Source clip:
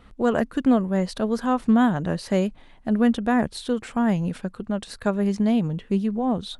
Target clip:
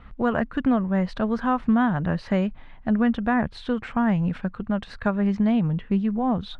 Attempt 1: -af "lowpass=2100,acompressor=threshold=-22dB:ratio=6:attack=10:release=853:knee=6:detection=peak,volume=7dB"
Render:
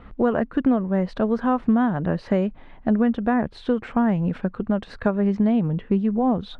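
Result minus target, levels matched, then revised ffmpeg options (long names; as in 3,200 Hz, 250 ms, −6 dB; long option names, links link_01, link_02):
500 Hz band +3.0 dB
-af "lowpass=2100,equalizer=frequency=400:width=0.73:gain=-9.5,acompressor=threshold=-22dB:ratio=6:attack=10:release=853:knee=6:detection=peak,volume=7dB"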